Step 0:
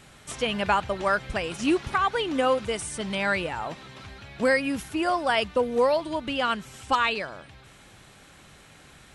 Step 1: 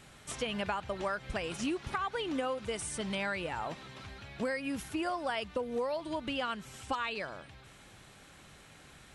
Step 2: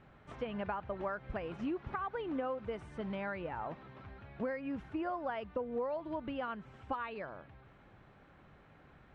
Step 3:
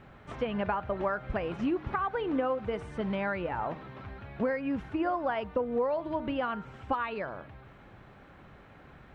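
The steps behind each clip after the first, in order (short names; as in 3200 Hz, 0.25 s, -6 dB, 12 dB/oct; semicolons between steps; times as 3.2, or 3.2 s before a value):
compressor 6:1, threshold -27 dBFS, peak gain reduction 9.5 dB; gain -4 dB
LPF 1500 Hz 12 dB/oct; gain -2.5 dB
de-hum 154.6 Hz, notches 10; gain +7.5 dB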